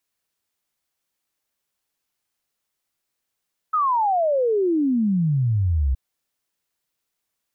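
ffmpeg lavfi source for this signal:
-f lavfi -i "aevalsrc='0.141*clip(min(t,2.22-t)/0.01,0,1)*sin(2*PI*1300*2.22/log(62/1300)*(exp(log(62/1300)*t/2.22)-1))':d=2.22:s=44100"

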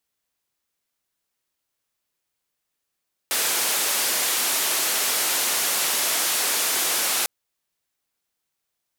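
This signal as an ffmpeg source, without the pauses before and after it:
-f lavfi -i "anoisesrc=c=white:d=3.95:r=44100:seed=1,highpass=f=330,lowpass=f=14000,volume=-16.1dB"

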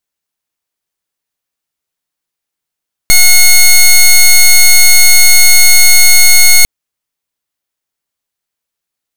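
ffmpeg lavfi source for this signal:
-f lavfi -i "aevalsrc='0.708*(2*lt(mod(2170*t,1),0.11)-1)':d=3.55:s=44100"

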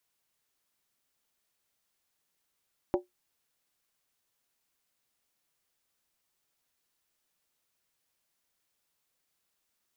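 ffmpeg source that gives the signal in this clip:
-f lavfi -i "aevalsrc='0.1*pow(10,-3*t/0.15)*sin(2*PI*360*t)+0.0562*pow(10,-3*t/0.119)*sin(2*PI*573.8*t)+0.0316*pow(10,-3*t/0.103)*sin(2*PI*769*t)+0.0178*pow(10,-3*t/0.099)*sin(2*PI*826.6*t)+0.01*pow(10,-3*t/0.092)*sin(2*PI*955.1*t)':d=0.63:s=44100"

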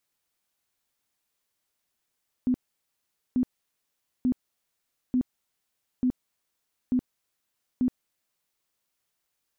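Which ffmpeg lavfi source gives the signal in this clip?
-f lavfi -i "aevalsrc='0.1*sin(2*PI*252*mod(t,0.89))*lt(mod(t,0.89),18/252)':d=6.23:s=44100"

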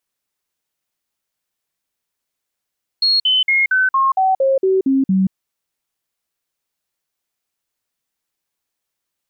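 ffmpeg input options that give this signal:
-f lavfi -i "aevalsrc='0.266*clip(min(mod(t,0.23),0.18-mod(t,0.23))/0.005,0,1)*sin(2*PI*4300*pow(2,-floor(t/0.23)/2)*mod(t,0.23))':d=2.3:s=44100"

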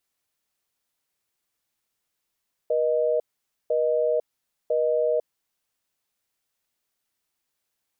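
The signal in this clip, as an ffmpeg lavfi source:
-f lavfi -i "aevalsrc='0.075*(sin(2*PI*480*t)+sin(2*PI*620*t))*clip(min(mod(t,1),0.5-mod(t,1))/0.005,0,1)':d=2.87:s=44100"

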